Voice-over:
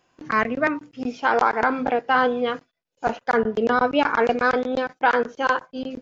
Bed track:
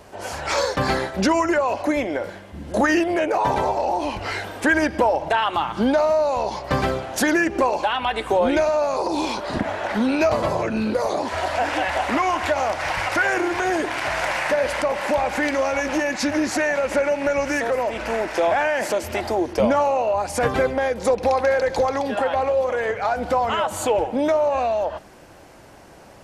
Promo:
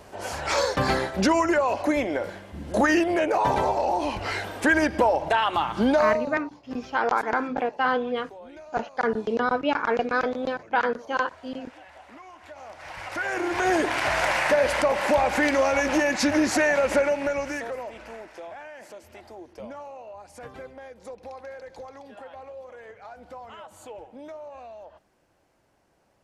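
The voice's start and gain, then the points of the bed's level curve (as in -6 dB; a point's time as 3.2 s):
5.70 s, -4.5 dB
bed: 6.08 s -2 dB
6.47 s -25.5 dB
12.38 s -25.5 dB
13.7 s 0 dB
16.91 s 0 dB
18.48 s -21 dB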